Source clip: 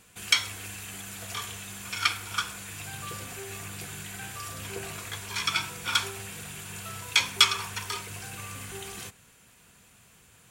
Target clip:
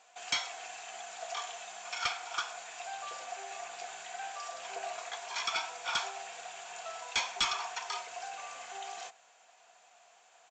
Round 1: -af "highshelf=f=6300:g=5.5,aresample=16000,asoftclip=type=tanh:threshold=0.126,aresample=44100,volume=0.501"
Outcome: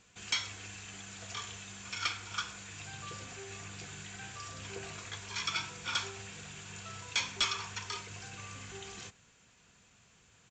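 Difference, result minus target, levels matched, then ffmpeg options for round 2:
1 kHz band -5.5 dB
-af "highpass=f=710:t=q:w=8,highshelf=f=6300:g=5.5,aresample=16000,asoftclip=type=tanh:threshold=0.126,aresample=44100,volume=0.501"

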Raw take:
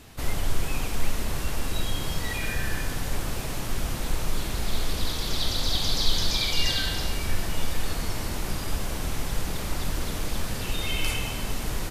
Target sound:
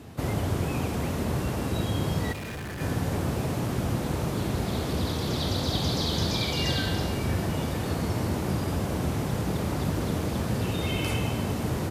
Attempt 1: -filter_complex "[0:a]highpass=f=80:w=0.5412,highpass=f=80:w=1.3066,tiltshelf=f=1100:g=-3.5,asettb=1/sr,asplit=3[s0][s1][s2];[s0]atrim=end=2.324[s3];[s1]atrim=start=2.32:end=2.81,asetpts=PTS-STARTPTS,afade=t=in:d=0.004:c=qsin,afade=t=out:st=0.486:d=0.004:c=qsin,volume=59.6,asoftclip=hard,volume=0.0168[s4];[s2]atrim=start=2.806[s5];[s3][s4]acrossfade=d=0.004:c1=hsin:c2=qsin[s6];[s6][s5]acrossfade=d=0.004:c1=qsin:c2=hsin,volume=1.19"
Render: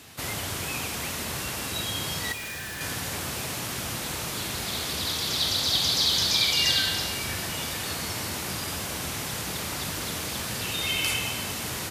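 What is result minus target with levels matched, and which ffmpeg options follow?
1 kHz band -3.0 dB
-filter_complex "[0:a]highpass=f=80:w=0.5412,highpass=f=80:w=1.3066,tiltshelf=f=1100:g=7,asettb=1/sr,asplit=3[s0][s1][s2];[s0]atrim=end=2.324[s3];[s1]atrim=start=2.32:end=2.81,asetpts=PTS-STARTPTS,afade=t=in:d=0.004:c=qsin,afade=t=out:st=0.486:d=0.004:c=qsin,volume=59.6,asoftclip=hard,volume=0.0168[s4];[s2]atrim=start=2.806[s5];[s3][s4]acrossfade=d=0.004:c1=hsin:c2=qsin[s6];[s6][s5]acrossfade=d=0.004:c1=qsin:c2=hsin,volume=1.19"

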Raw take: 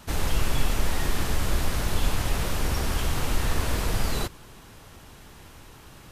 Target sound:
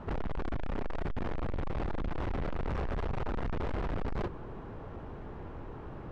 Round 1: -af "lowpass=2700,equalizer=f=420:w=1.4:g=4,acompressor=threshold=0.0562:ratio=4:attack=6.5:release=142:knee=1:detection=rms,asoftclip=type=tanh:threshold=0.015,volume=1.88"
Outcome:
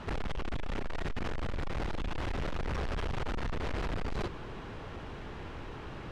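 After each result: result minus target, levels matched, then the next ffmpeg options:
compression: peak gain reduction +10 dB; 2 kHz band +4.0 dB
-af "lowpass=2700,equalizer=f=420:w=1.4:g=4,asoftclip=type=tanh:threshold=0.015,volume=1.88"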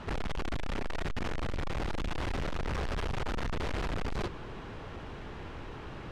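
2 kHz band +4.5 dB
-af "lowpass=1100,equalizer=f=420:w=1.4:g=4,asoftclip=type=tanh:threshold=0.015,volume=1.88"

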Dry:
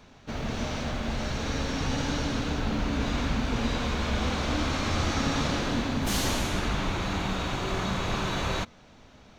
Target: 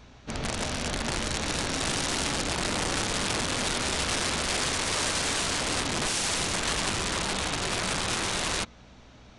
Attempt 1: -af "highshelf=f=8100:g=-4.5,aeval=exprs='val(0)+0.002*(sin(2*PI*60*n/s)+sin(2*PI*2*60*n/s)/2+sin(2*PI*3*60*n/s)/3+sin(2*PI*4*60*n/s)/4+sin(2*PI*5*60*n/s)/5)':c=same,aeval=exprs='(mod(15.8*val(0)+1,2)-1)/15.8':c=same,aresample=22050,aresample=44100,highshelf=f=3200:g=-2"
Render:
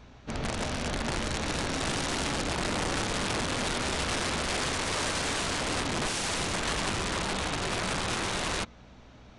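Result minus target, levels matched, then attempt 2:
8 kHz band -2.5 dB
-af "highshelf=f=8100:g=-4.5,aeval=exprs='val(0)+0.002*(sin(2*PI*60*n/s)+sin(2*PI*2*60*n/s)/2+sin(2*PI*3*60*n/s)/3+sin(2*PI*4*60*n/s)/4+sin(2*PI*5*60*n/s)/5)':c=same,aeval=exprs='(mod(15.8*val(0)+1,2)-1)/15.8':c=same,aresample=22050,aresample=44100,highshelf=f=3200:g=4"

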